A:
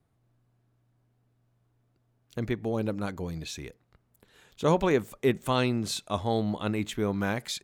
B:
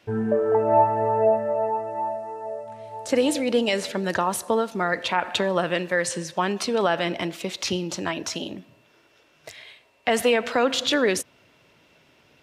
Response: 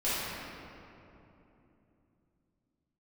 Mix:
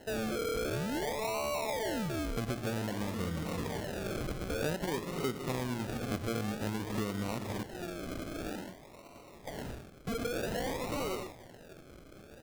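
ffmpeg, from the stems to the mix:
-filter_complex "[0:a]tiltshelf=frequency=970:gain=4,volume=-0.5dB,asplit=3[link_01][link_02][link_03];[link_02]volume=-17.5dB[link_04];[1:a]asplit=2[link_05][link_06];[link_06]highpass=frequency=720:poles=1,volume=36dB,asoftclip=type=tanh:threshold=-6.5dB[link_07];[link_05][link_07]amix=inputs=2:normalize=0,lowpass=frequency=2200:poles=1,volume=-6dB,volume=-19.5dB,asplit=2[link_08][link_09];[link_09]volume=-7.5dB[link_10];[link_03]apad=whole_len=548053[link_11];[link_08][link_11]sidechaincompress=threshold=-40dB:ratio=4:attack=46:release=1140[link_12];[2:a]atrim=start_sample=2205[link_13];[link_04][link_13]afir=irnorm=-1:irlink=0[link_14];[link_10]aecho=0:1:109:1[link_15];[link_01][link_12][link_14][link_15]amix=inputs=4:normalize=0,acrusher=samples=37:mix=1:aa=0.000001:lfo=1:lforange=22.2:lforate=0.52,acompressor=threshold=-32dB:ratio=6"

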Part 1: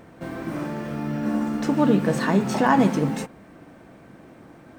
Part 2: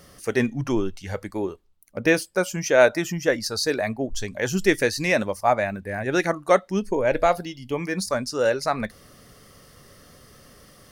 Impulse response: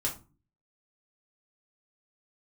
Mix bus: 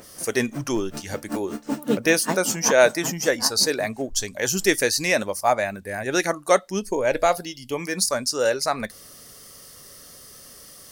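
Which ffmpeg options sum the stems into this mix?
-filter_complex "[0:a]aeval=exprs='val(0)*pow(10,-27*(0.5-0.5*cos(2*PI*5.2*n/s))/20)':channel_layout=same,volume=1.5dB,asplit=2[link_01][link_02];[link_02]volume=-11.5dB[link_03];[1:a]adynamicequalizer=threshold=0.0178:dfrequency=3300:dqfactor=0.7:tfrequency=3300:tqfactor=0.7:attack=5:release=100:ratio=0.375:range=2:mode=cutabove:tftype=highshelf,volume=0dB,asplit=2[link_04][link_05];[link_05]apad=whole_len=210993[link_06];[link_01][link_06]sidechaincompress=threshold=-35dB:ratio=5:attack=34:release=106[link_07];[link_03]aecho=0:1:760:1[link_08];[link_07][link_04][link_08]amix=inputs=3:normalize=0,bass=frequency=250:gain=-5,treble=frequency=4000:gain=12"

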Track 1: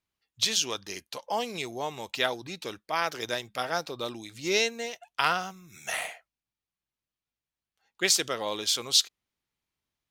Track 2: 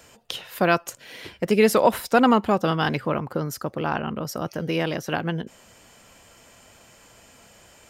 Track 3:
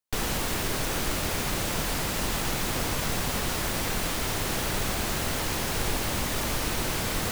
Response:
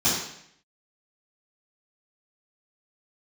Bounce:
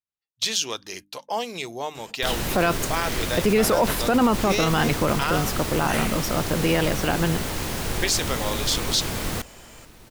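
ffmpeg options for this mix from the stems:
-filter_complex "[0:a]agate=range=-17dB:threshold=-44dB:ratio=16:detection=peak,bandreject=frequency=50:width_type=h:width=6,bandreject=frequency=100:width_type=h:width=6,bandreject=frequency=150:width_type=h:width=6,bandreject=frequency=200:width_type=h:width=6,bandreject=frequency=250:width_type=h:width=6,bandreject=frequency=300:width_type=h:width=6,volume=2.5dB[link_01];[1:a]acontrast=32,adelay=1950,volume=-1.5dB[link_02];[2:a]acrossover=split=480[link_03][link_04];[link_04]acompressor=threshold=-31dB:ratio=6[link_05];[link_03][link_05]amix=inputs=2:normalize=0,adelay=2100,volume=2.5dB,asplit=2[link_06][link_07];[link_07]volume=-21dB,aecho=0:1:1124:1[link_08];[link_01][link_02][link_06][link_08]amix=inputs=4:normalize=0,alimiter=limit=-11dB:level=0:latency=1:release=22"

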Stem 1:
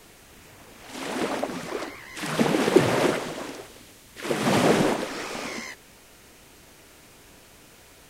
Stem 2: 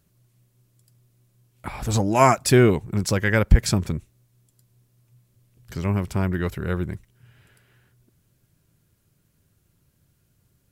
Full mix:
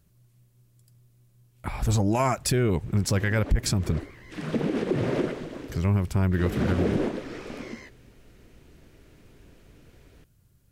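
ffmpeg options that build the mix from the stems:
ffmpeg -i stem1.wav -i stem2.wav -filter_complex "[0:a]firequalizer=gain_entry='entry(390,0);entry(820,-10);entry(1600,-6)':delay=0.05:min_phase=1,aemphasis=mode=reproduction:type=50fm,adelay=2150,volume=-2dB[link_01];[1:a]volume=-1.5dB,asplit=2[link_02][link_03];[link_03]apad=whole_len=456017[link_04];[link_01][link_04]sidechaincompress=threshold=-22dB:ratio=3:attack=11:release=288[link_05];[link_05][link_02]amix=inputs=2:normalize=0,lowshelf=frequency=95:gain=9.5,asoftclip=type=tanh:threshold=-3dB,alimiter=limit=-15.5dB:level=0:latency=1:release=84" out.wav

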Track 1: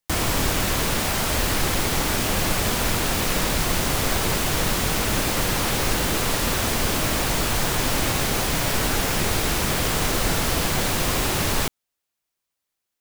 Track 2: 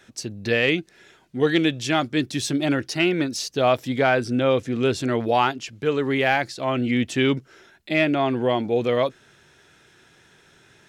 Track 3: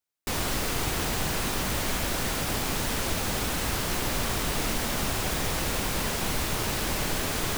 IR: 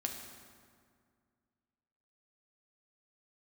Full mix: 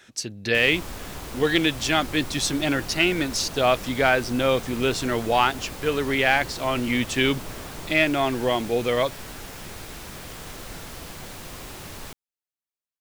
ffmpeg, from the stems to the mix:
-filter_complex "[0:a]adelay=450,volume=-16dB[link_01];[1:a]tiltshelf=frequency=970:gain=-3.5,volume=0dB[link_02];[2:a]afwtdn=0.0316,adelay=350,volume=-9.5dB[link_03];[link_01][link_02][link_03]amix=inputs=3:normalize=0"

